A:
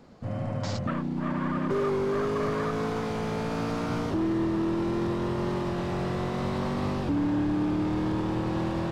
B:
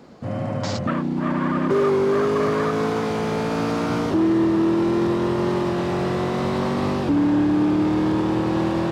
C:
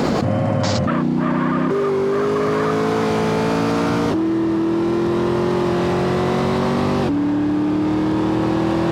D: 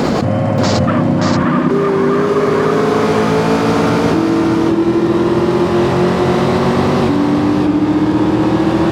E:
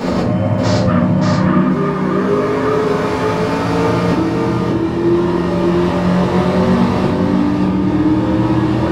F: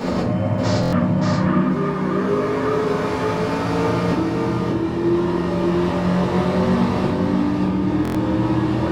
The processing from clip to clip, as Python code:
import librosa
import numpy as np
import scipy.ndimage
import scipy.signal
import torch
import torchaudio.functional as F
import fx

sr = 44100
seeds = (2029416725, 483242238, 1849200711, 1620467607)

y1 = fx.highpass(x, sr, hz=130.0, slope=6)
y1 = fx.peak_eq(y1, sr, hz=340.0, db=2.5, octaves=0.77)
y1 = y1 * librosa.db_to_amplitude(7.0)
y2 = fx.env_flatten(y1, sr, amount_pct=100)
y2 = y2 * librosa.db_to_amplitude(-1.5)
y3 = y2 + 10.0 ** (-3.5 / 20.0) * np.pad(y2, (int(580 * sr / 1000.0), 0))[:len(y2)]
y3 = y3 * librosa.db_to_amplitude(4.0)
y4 = fx.room_shoebox(y3, sr, seeds[0], volume_m3=360.0, walls='furnished', distance_m=5.8)
y4 = y4 * librosa.db_to_amplitude(-12.0)
y5 = fx.buffer_glitch(y4, sr, at_s=(0.81, 8.03), block=1024, repeats=4)
y5 = y5 * librosa.db_to_amplitude(-5.0)